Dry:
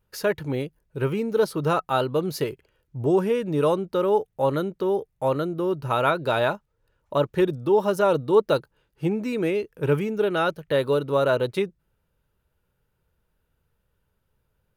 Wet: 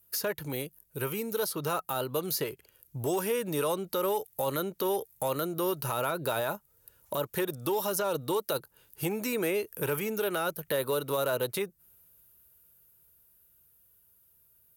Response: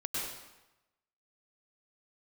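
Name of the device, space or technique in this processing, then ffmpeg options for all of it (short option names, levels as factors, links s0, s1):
FM broadcast chain: -filter_complex "[0:a]highpass=46,dynaudnorm=f=200:g=31:m=3.76,acrossover=split=540|1900|6500[s0][s1][s2][s3];[s0]acompressor=threshold=0.0316:ratio=4[s4];[s1]acompressor=threshold=0.0631:ratio=4[s5];[s2]acompressor=threshold=0.00708:ratio=4[s6];[s3]acompressor=threshold=0.001:ratio=4[s7];[s4][s5][s6][s7]amix=inputs=4:normalize=0,aemphasis=mode=production:type=50fm,alimiter=limit=0.141:level=0:latency=1:release=33,asoftclip=type=hard:threshold=0.126,lowpass=f=15000:w=0.5412,lowpass=f=15000:w=1.3066,aemphasis=mode=production:type=50fm,volume=0.631"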